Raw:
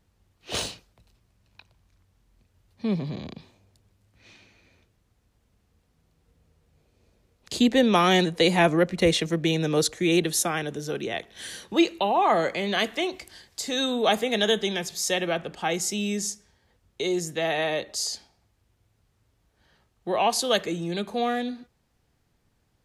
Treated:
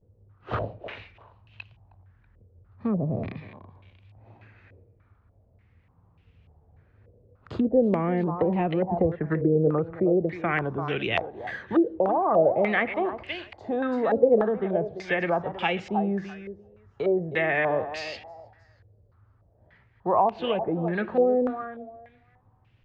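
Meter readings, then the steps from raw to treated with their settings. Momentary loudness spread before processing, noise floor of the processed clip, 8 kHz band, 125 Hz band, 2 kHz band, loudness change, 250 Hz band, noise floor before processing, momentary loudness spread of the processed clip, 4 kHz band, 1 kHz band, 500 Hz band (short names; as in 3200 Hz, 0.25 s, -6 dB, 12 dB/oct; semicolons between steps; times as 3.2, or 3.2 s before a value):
14 LU, -62 dBFS, under -30 dB, +1.5 dB, -1.0 dB, -1.0 dB, -0.5 dB, -70 dBFS, 14 LU, -13.5 dB, -1.0 dB, +2.0 dB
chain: bell 100 Hz +13 dB 0.8 oct; treble ducked by the level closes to 660 Hz, closed at -18 dBFS; compressor 3:1, threshold -23 dBFS, peak gain reduction 7 dB; thinning echo 0.328 s, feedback 22%, high-pass 430 Hz, level -8.5 dB; vibrato 0.72 Hz 86 cents; stepped low-pass 3.4 Hz 490–2700 Hz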